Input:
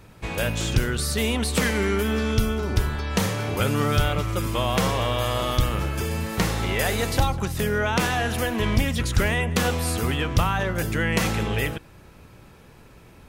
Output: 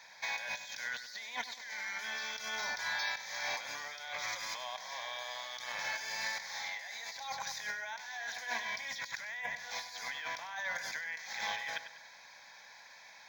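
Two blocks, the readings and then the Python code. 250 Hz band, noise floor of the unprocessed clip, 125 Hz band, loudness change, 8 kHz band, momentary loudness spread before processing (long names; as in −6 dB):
−36.5 dB, −49 dBFS, below −40 dB, −14.5 dB, −12.0 dB, 3 LU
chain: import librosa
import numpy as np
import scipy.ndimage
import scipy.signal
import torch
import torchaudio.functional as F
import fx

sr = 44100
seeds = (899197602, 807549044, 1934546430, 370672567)

y = scipy.signal.sosfilt(scipy.signal.butter(2, 1300.0, 'highpass', fs=sr, output='sos'), x)
y = fx.peak_eq(y, sr, hz=6500.0, db=11.0, octaves=0.57)
y = fx.over_compress(y, sr, threshold_db=-37.0, ratio=-1.0)
y = fx.air_absorb(y, sr, metres=76.0)
y = fx.fixed_phaser(y, sr, hz=1900.0, stages=8)
y = fx.echo_feedback(y, sr, ms=98, feedback_pct=43, wet_db=-11.5)
y = np.interp(np.arange(len(y)), np.arange(len(y))[::2], y[::2])
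y = y * librosa.db_to_amplitude(1.0)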